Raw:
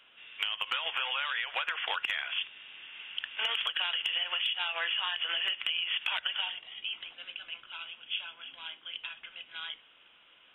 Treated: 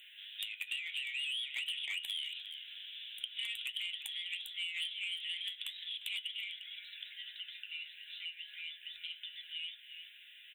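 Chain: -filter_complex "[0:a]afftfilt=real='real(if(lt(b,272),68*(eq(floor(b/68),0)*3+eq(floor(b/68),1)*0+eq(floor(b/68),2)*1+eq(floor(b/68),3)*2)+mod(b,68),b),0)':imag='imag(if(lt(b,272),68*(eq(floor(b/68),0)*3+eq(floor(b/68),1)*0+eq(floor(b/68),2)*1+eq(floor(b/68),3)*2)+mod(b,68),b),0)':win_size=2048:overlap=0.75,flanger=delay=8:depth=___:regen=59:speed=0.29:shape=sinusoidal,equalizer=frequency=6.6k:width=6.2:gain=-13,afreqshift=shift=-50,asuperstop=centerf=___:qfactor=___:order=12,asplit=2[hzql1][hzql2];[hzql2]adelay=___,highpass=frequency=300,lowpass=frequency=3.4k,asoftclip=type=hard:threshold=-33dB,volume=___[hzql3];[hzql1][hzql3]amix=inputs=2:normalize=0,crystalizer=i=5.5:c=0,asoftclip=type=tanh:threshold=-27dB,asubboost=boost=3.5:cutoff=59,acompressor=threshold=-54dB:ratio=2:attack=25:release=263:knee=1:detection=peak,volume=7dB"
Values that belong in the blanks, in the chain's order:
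4.8, 4700, 1.7, 350, -15dB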